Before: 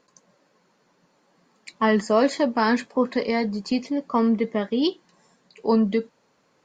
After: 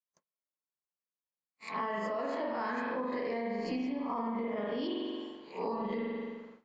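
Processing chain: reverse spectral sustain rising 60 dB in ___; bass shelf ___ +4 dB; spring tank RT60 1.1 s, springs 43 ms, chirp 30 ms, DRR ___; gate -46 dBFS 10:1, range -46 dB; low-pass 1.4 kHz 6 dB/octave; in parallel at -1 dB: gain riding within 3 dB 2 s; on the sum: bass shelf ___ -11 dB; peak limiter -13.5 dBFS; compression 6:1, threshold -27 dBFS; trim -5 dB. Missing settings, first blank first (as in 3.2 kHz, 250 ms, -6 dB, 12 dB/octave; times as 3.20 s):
0.35 s, 88 Hz, -2.5 dB, 410 Hz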